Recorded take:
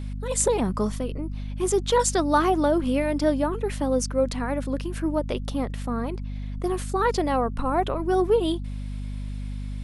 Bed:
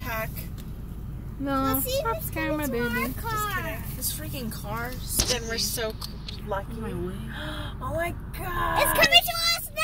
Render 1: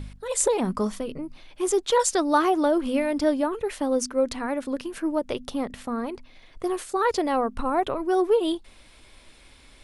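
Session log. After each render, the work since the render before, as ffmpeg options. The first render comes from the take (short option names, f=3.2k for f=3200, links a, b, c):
-af "bandreject=f=50:t=h:w=4,bandreject=f=100:t=h:w=4,bandreject=f=150:t=h:w=4,bandreject=f=200:t=h:w=4,bandreject=f=250:t=h:w=4"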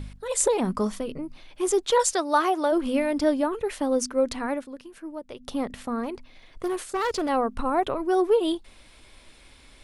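-filter_complex "[0:a]asplit=3[a][b][c];[a]afade=t=out:st=2.12:d=0.02[d];[b]highpass=410,afade=t=in:st=2.12:d=0.02,afade=t=out:st=2.71:d=0.02[e];[c]afade=t=in:st=2.71:d=0.02[f];[d][e][f]amix=inputs=3:normalize=0,asettb=1/sr,asplit=3[g][h][i];[g]atrim=end=6.034[j];[h]atrim=start=6.03:end=7.29,asetpts=PTS-STARTPTS,afade=t=in:d=0.004:c=qsin,afade=t=out:st=1.256:d=0.004:c=qsin,asoftclip=type=hard:threshold=-23dB[k];[i]atrim=start=7.286[l];[j][k]acrossfade=d=0.004:c1=hsin:c2=qsin[m];[m][l]acrossfade=d=0.004:c1=qsin:c2=hsin,asplit=3[n][o][p];[n]atrim=end=4.67,asetpts=PTS-STARTPTS,afade=t=out:st=4.54:d=0.13:silence=0.281838[q];[o]atrim=start=4.67:end=5.39,asetpts=PTS-STARTPTS,volume=-11dB[r];[p]atrim=start=5.39,asetpts=PTS-STARTPTS,afade=t=in:d=0.13:silence=0.281838[s];[q][r][s]concat=n=3:v=0:a=1"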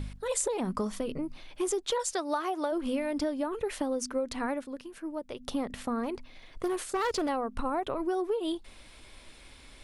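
-af "acompressor=threshold=-27dB:ratio=10"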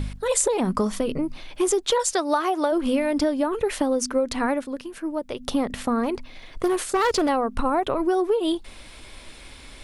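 -af "volume=8.5dB"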